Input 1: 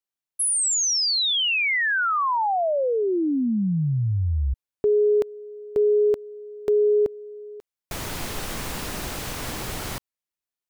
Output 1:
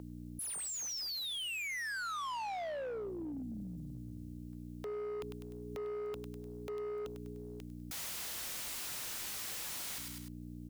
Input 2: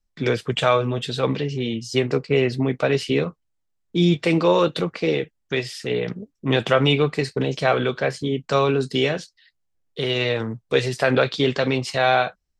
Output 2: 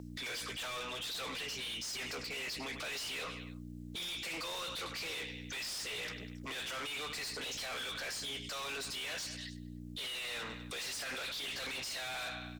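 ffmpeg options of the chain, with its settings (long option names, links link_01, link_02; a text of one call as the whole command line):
ffmpeg -i in.wav -filter_complex "[0:a]equalizer=frequency=370:width_type=o:width=0.24:gain=-6,acrossover=split=240|2300[link_01][link_02][link_03];[link_03]acompressor=threshold=-34dB:ratio=6:release=41[link_04];[link_01][link_02][link_04]amix=inputs=3:normalize=0,aderivative,aeval=exprs='val(0)+0.00316*(sin(2*PI*60*n/s)+sin(2*PI*2*60*n/s)/2+sin(2*PI*3*60*n/s)/3+sin(2*PI*4*60*n/s)/4+sin(2*PI*5*60*n/s)/5)':channel_layout=same,acrossover=split=340|2400[link_05][link_06][link_07];[link_06]acompressor=threshold=-42dB:ratio=6:attack=26:release=36:knee=2.83:detection=peak[link_08];[link_05][link_08][link_07]amix=inputs=3:normalize=0,aecho=1:1:100|200|300:0.1|0.043|0.0185,asplit=2[link_09][link_10];[link_10]highpass=frequency=720:poles=1,volume=30dB,asoftclip=type=tanh:threshold=-21.5dB[link_11];[link_09][link_11]amix=inputs=2:normalize=0,lowpass=frequency=5700:poles=1,volume=-6dB,asplit=2[link_12][link_13];[link_13]aeval=exprs='0.0237*(abs(mod(val(0)/0.0237+3,4)-2)-1)':channel_layout=same,volume=-9dB[link_14];[link_12][link_14]amix=inputs=2:normalize=0,alimiter=level_in=9dB:limit=-24dB:level=0:latency=1:release=14,volume=-9dB,volume=-4.5dB" out.wav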